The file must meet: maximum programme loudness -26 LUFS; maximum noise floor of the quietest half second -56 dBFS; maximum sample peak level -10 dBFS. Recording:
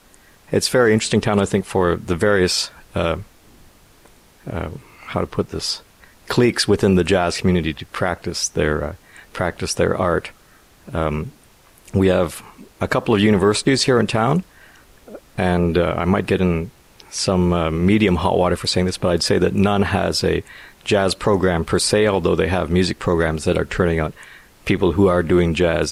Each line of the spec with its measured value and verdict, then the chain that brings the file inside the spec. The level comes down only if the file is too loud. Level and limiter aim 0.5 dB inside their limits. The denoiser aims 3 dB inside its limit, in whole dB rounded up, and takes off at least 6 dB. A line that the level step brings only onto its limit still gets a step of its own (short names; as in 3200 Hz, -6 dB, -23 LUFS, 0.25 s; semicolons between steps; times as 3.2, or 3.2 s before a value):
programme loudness -19.0 LUFS: fail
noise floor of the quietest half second -51 dBFS: fail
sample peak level -5.0 dBFS: fail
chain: gain -7.5 dB